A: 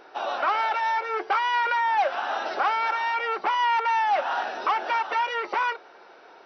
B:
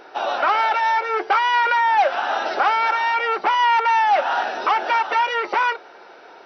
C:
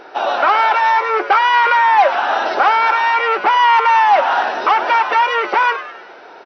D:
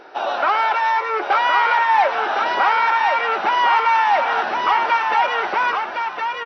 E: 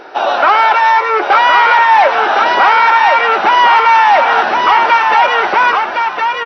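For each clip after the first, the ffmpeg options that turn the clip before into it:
ffmpeg -i in.wav -af "bandreject=frequency=1100:width=16,volume=6dB" out.wav
ffmpeg -i in.wav -filter_complex "[0:a]highshelf=frequency=5200:gain=-6,asplit=6[link_01][link_02][link_03][link_04][link_05][link_06];[link_02]adelay=100,afreqshift=120,volume=-13dB[link_07];[link_03]adelay=200,afreqshift=240,volume=-19.4dB[link_08];[link_04]adelay=300,afreqshift=360,volume=-25.8dB[link_09];[link_05]adelay=400,afreqshift=480,volume=-32.1dB[link_10];[link_06]adelay=500,afreqshift=600,volume=-38.5dB[link_11];[link_01][link_07][link_08][link_09][link_10][link_11]amix=inputs=6:normalize=0,volume=5.5dB" out.wav
ffmpeg -i in.wav -af "asubboost=boost=4:cutoff=190,aecho=1:1:1063:0.596,volume=-4.5dB" out.wav
ffmpeg -i in.wav -af "apsyclip=11dB,volume=-2dB" out.wav

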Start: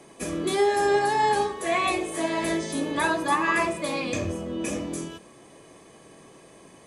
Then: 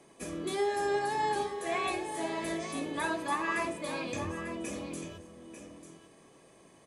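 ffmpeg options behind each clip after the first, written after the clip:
ffmpeg -i in.wav -af "aecho=1:1:894:0.299,volume=-8.5dB" out.wav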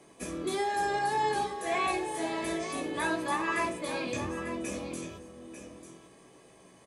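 ffmpeg -i in.wav -filter_complex "[0:a]asplit=2[link_01][link_02];[link_02]adelay=16,volume=-5dB[link_03];[link_01][link_03]amix=inputs=2:normalize=0,volume=1dB" out.wav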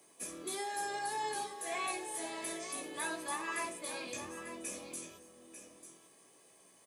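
ffmpeg -i in.wav -af "aemphasis=mode=production:type=bsi,volume=-8.5dB" out.wav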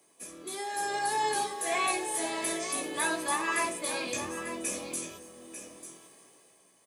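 ffmpeg -i in.wav -af "dynaudnorm=framelen=120:gausssize=13:maxgain=10dB,volume=-1.5dB" out.wav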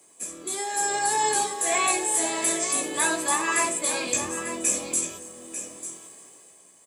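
ffmpeg -i in.wav -af "equalizer=frequency=7600:width=4.4:gain=14.5,volume=4.5dB" out.wav

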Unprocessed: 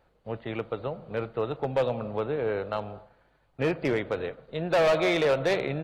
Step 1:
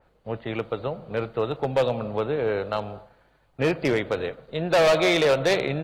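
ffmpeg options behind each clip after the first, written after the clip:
ffmpeg -i in.wav -af "adynamicequalizer=threshold=0.00708:dfrequency=3200:dqfactor=0.7:tfrequency=3200:tqfactor=0.7:attack=5:release=100:ratio=0.375:range=3:mode=boostabove:tftype=highshelf,volume=3.5dB" out.wav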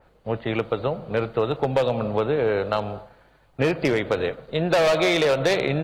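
ffmpeg -i in.wav -af "acompressor=threshold=-22dB:ratio=6,volume=5dB" out.wav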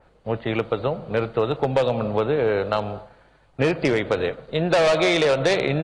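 ffmpeg -i in.wav -af "aresample=22050,aresample=44100,volume=1dB" out.wav

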